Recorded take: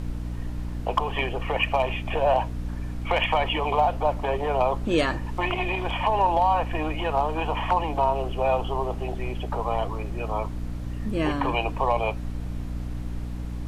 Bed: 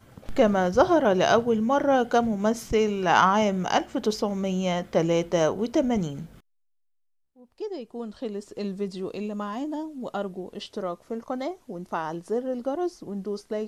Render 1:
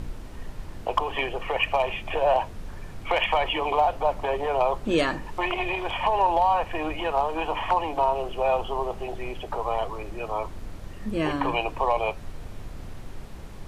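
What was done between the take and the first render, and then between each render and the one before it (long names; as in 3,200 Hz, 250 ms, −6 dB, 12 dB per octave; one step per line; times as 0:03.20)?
mains-hum notches 60/120/180/240/300 Hz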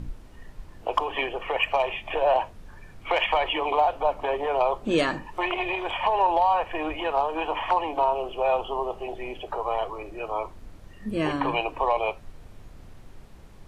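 noise reduction from a noise print 8 dB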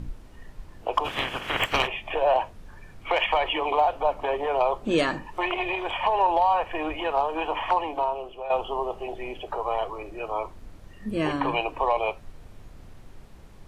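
0:01.04–0:01.86: ceiling on every frequency bin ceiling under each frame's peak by 28 dB
0:07.73–0:08.50: fade out, to −12 dB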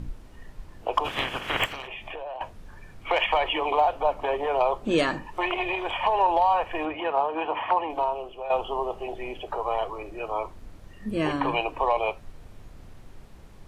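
0:01.69–0:02.41: downward compressor 8 to 1, threshold −33 dBFS
0:06.85–0:07.90: band-pass filter 110–2,900 Hz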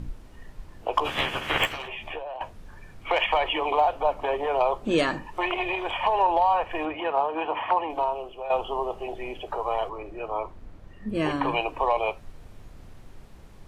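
0:00.98–0:02.19: double-tracking delay 13 ms −3 dB
0:06.23–0:06.70: high-shelf EQ 5,700 Hz −5.5 dB
0:09.89–0:11.15: high-shelf EQ 3,800 Hz −11 dB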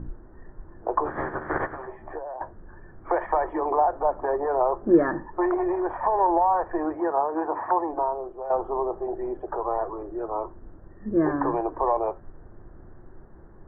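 elliptic low-pass filter 1,700 Hz, stop band 40 dB
parametric band 350 Hz +10.5 dB 0.31 octaves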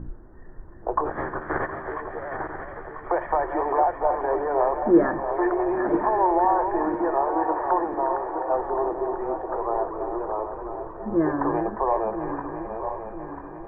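feedback delay that plays each chunk backwards 496 ms, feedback 68%, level −7 dB
delay with a high-pass on its return 358 ms, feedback 71%, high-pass 1,800 Hz, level −5 dB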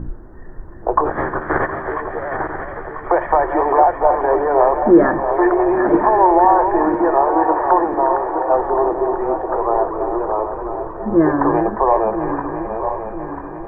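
level +8.5 dB
brickwall limiter −1 dBFS, peak gain reduction 3 dB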